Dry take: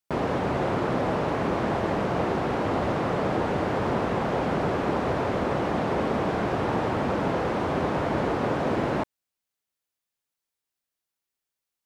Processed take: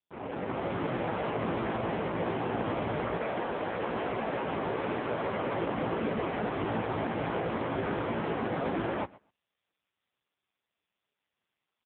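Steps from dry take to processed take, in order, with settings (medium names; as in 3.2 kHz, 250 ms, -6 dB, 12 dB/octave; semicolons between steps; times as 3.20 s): fade-in on the opening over 0.87 s; 3.15–5.53 s: high-pass 320 Hz -> 130 Hz 6 dB/octave; treble shelf 2.2 kHz +3.5 dB; saturation -28 dBFS, distortion -9 dB; distance through air 99 m; doubling 18 ms -5 dB; feedback delay 126 ms, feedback 16%, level -21.5 dB; trim +2 dB; AMR-NB 5.15 kbps 8 kHz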